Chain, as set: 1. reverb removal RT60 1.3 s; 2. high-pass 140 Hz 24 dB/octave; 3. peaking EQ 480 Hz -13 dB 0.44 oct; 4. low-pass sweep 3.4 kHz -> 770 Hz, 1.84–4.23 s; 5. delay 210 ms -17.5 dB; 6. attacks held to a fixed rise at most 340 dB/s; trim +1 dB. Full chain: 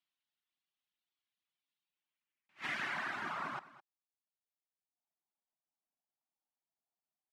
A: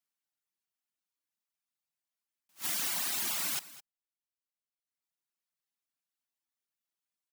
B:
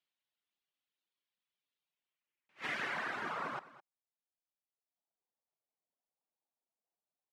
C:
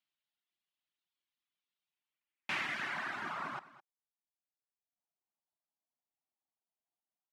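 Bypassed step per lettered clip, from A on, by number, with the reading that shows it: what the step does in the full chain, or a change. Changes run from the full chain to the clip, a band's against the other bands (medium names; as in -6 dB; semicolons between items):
4, 8 kHz band +28.0 dB; 3, 500 Hz band +4.5 dB; 6, 4 kHz band +2.0 dB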